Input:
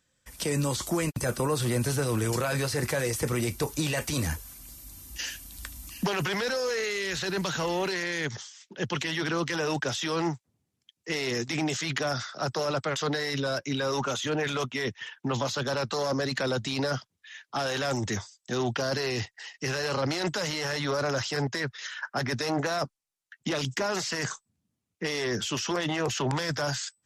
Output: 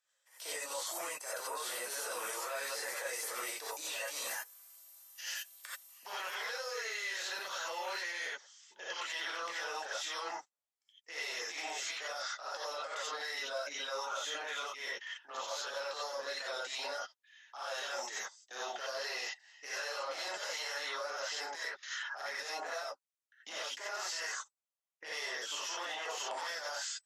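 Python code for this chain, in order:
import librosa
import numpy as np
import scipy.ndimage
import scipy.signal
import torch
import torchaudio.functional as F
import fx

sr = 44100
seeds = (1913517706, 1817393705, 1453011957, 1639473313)

y = scipy.signal.sosfilt(scipy.signal.butter(4, 560.0, 'highpass', fs=sr, output='sos'), x)
y = fx.level_steps(y, sr, step_db=20)
y = fx.rev_gated(y, sr, seeds[0], gate_ms=110, shape='rising', drr_db=-8.0)
y = F.gain(torch.from_numpy(y), -8.0).numpy()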